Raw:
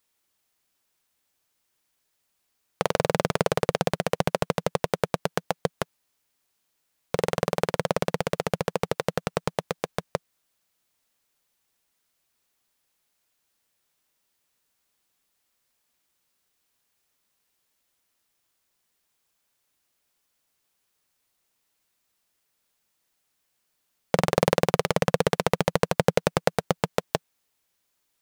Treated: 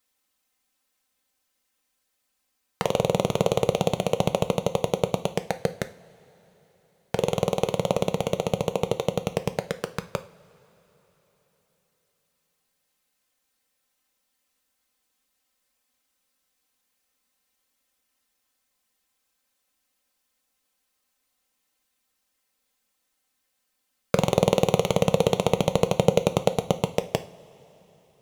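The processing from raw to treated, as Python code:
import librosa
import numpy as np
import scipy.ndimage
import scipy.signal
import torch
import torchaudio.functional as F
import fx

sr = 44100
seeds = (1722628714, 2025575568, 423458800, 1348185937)

y = fx.env_flanger(x, sr, rest_ms=3.9, full_db=-26.0)
y = fx.rev_double_slope(y, sr, seeds[0], early_s=0.37, late_s=4.1, knee_db=-21, drr_db=9.0)
y = y * 10.0 ** (2.5 / 20.0)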